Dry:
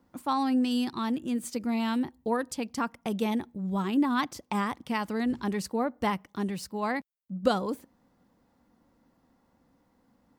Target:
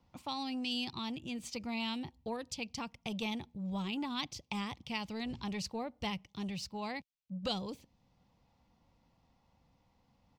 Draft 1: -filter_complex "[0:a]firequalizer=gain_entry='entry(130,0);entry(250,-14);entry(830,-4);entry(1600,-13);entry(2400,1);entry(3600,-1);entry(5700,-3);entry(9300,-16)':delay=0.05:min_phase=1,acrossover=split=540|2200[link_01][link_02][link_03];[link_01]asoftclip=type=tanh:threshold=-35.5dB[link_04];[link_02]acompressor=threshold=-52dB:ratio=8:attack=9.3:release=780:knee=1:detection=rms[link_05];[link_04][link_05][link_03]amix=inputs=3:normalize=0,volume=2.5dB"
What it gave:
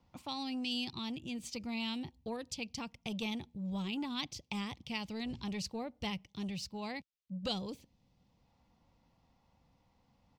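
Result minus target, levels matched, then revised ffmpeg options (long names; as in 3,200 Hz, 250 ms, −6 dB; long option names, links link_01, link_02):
downward compressor: peak gain reduction +6 dB
-filter_complex "[0:a]firequalizer=gain_entry='entry(130,0);entry(250,-14);entry(830,-4);entry(1600,-13);entry(2400,1);entry(3600,-1);entry(5700,-3);entry(9300,-16)':delay=0.05:min_phase=1,acrossover=split=540|2200[link_01][link_02][link_03];[link_01]asoftclip=type=tanh:threshold=-35.5dB[link_04];[link_02]acompressor=threshold=-45dB:ratio=8:attack=9.3:release=780:knee=1:detection=rms[link_05];[link_04][link_05][link_03]amix=inputs=3:normalize=0,volume=2.5dB"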